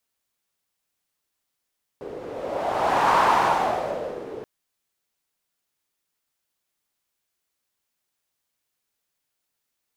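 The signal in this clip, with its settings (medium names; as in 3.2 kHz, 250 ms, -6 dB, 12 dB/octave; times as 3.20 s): wind-like swept noise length 2.43 s, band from 430 Hz, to 960 Hz, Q 3.5, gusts 1, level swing 18 dB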